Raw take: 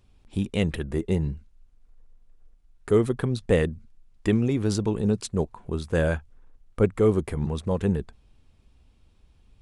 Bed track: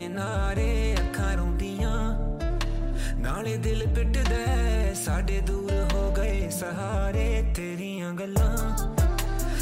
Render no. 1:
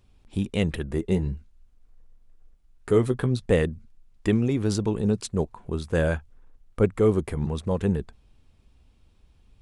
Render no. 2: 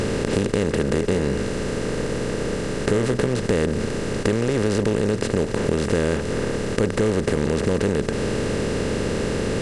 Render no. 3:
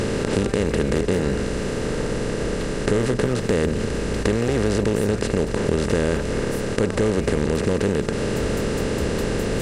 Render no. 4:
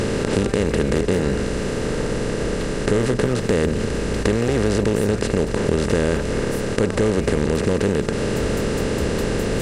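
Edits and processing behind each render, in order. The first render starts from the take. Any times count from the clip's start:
0:01.10–0:03.40: double-tracking delay 16 ms −9 dB
compressor on every frequency bin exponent 0.2; downward compressor 4 to 1, threshold −17 dBFS, peak gain reduction 7 dB
mix in bed track −7.5 dB
level +1.5 dB; brickwall limiter −2 dBFS, peak gain reduction 1 dB

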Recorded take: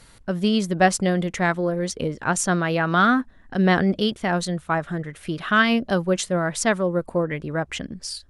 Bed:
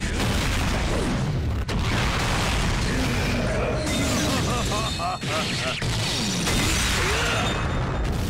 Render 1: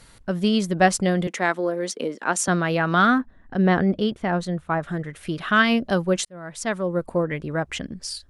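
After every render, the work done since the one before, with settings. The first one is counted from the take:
0:01.27–0:02.48: high-pass filter 230 Hz 24 dB per octave
0:03.18–0:04.83: high-shelf EQ 2,900 Hz −11.5 dB
0:06.25–0:07.06: fade in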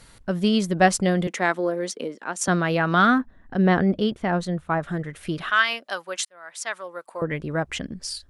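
0:01.74–0:02.41: fade out, to −10 dB
0:05.50–0:07.22: high-pass filter 960 Hz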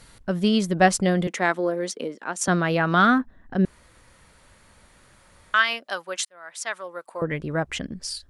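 0:03.65–0:05.54: fill with room tone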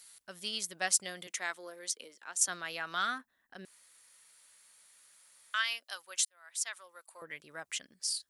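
first difference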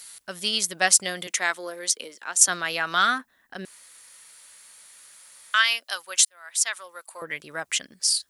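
level +12 dB
brickwall limiter −3 dBFS, peak gain reduction 2.5 dB

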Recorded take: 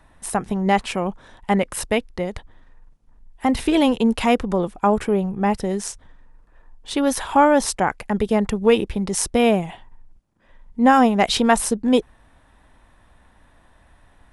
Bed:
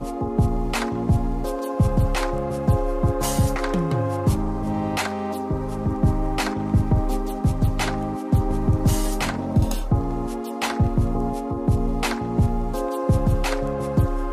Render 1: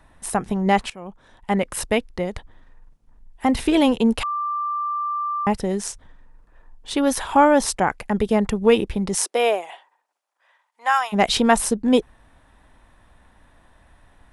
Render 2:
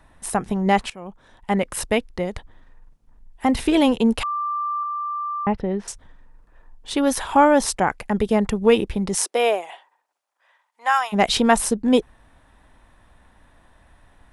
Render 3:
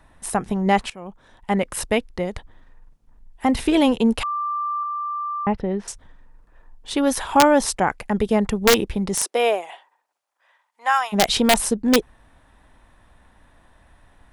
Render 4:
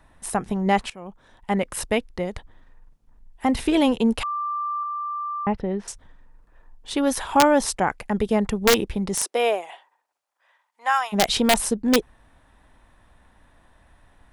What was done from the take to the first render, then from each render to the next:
0:00.90–0:01.76: fade in, from −20.5 dB; 0:04.23–0:05.47: beep over 1,180 Hz −22 dBFS; 0:09.15–0:11.12: high-pass filter 350 Hz → 1,000 Hz 24 dB per octave
0:04.83–0:05.88: high-frequency loss of the air 370 metres
wrap-around overflow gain 5.5 dB
level −2 dB

